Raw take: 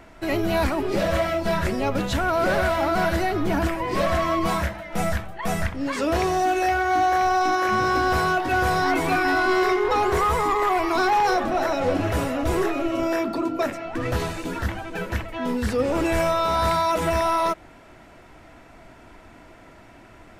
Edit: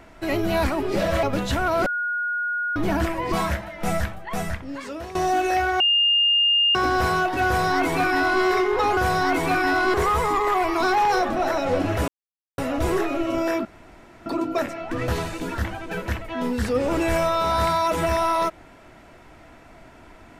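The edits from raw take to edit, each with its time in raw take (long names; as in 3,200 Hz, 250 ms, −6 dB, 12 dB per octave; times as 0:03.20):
0:01.23–0:01.85: remove
0:02.48–0:03.38: beep over 1,440 Hz −22.5 dBFS
0:03.94–0:04.44: remove
0:05.21–0:06.27: fade out, to −16.5 dB
0:06.92–0:07.87: beep over 2,820 Hz −15.5 dBFS
0:08.58–0:09.55: duplicate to 0:10.09
0:12.23: splice in silence 0.50 s
0:13.30: splice in room tone 0.61 s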